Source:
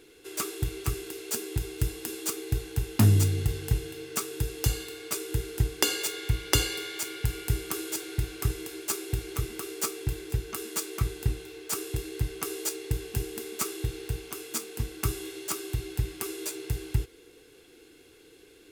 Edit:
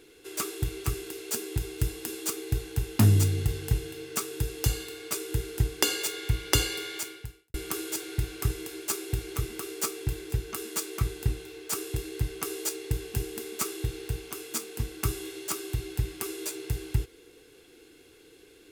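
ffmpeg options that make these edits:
ffmpeg -i in.wav -filter_complex "[0:a]asplit=2[link_01][link_02];[link_01]atrim=end=7.54,asetpts=PTS-STARTPTS,afade=type=out:start_time=6.97:duration=0.57:curve=qua[link_03];[link_02]atrim=start=7.54,asetpts=PTS-STARTPTS,afade=type=in:duration=0.004:curve=hsin[link_04];[link_03][link_04]concat=n=2:v=0:a=1" out.wav

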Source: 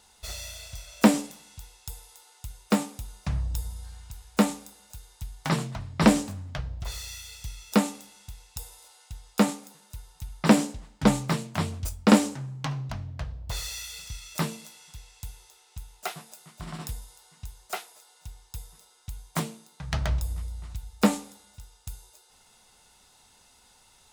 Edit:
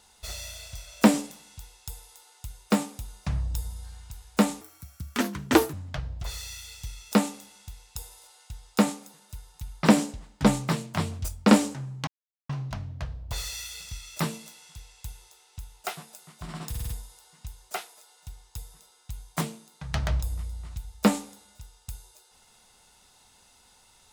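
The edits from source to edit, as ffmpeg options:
ffmpeg -i in.wav -filter_complex "[0:a]asplit=8[link_01][link_02][link_03][link_04][link_05][link_06][link_07][link_08];[link_01]atrim=end=4.614[link_09];[link_02]atrim=start=4.61:end=6.34,asetpts=PTS-STARTPTS,asetrate=67914,aresample=44100[link_10];[link_03]atrim=start=6.336:end=12.68,asetpts=PTS-STARTPTS,afade=type=out:start_time=6.34:duration=0.004:curve=hsin,apad=pad_dur=0.42[link_11];[link_04]atrim=start=12.68:end=16.932,asetpts=PTS-STARTPTS,afade=type=in:duration=0.004:curve=hsin[link_12];[link_05]atrim=start=16.878:end=16.932[link_13];[link_06]atrim=start=16.878:end=16.932[link_14];[link_07]atrim=start=16.878:end=16.932[link_15];[link_08]atrim=start=16.878[link_16];[link_09][link_10]acrossfade=duration=0.004:curve1=hsin:curve2=hsin[link_17];[link_11][link_12]concat=n=2:v=0:a=1[link_18];[link_17][link_18]acrossfade=duration=0.004:curve1=hsin:curve2=hsin[link_19];[link_19][link_13]acrossfade=duration=0.004:curve1=hsin:curve2=hsin[link_20];[link_20][link_14]acrossfade=duration=0.004:curve1=hsin:curve2=hsin[link_21];[link_21][link_15]acrossfade=duration=0.004:curve1=hsin:curve2=hsin[link_22];[link_22][link_16]acrossfade=duration=0.004:curve1=hsin:curve2=hsin" out.wav

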